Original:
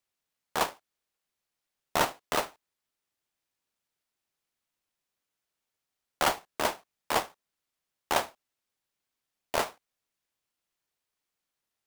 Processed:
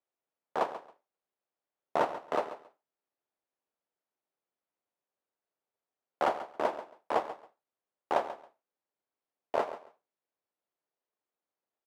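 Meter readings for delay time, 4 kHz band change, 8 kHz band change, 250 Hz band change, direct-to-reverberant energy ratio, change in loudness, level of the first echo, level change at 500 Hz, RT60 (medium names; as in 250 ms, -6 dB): 137 ms, -14.0 dB, under -20 dB, -2.5 dB, no reverb, -3.0 dB, -13.0 dB, +1.5 dB, no reverb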